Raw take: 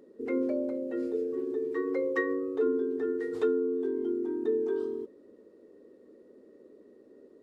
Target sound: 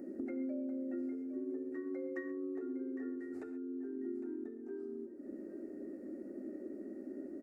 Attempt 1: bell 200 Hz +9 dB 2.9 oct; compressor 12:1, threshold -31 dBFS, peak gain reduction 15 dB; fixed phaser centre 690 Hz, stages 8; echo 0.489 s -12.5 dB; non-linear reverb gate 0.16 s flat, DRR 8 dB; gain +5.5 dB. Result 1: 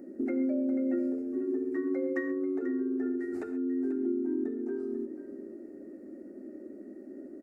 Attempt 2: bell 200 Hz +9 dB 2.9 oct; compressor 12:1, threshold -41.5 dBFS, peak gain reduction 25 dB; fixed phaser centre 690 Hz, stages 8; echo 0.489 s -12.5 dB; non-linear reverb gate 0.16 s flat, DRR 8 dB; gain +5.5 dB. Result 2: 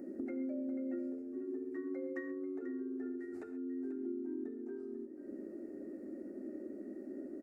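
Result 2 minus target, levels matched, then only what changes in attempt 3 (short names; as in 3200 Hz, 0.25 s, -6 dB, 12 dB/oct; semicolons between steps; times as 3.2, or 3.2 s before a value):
echo 0.318 s early
change: echo 0.807 s -12.5 dB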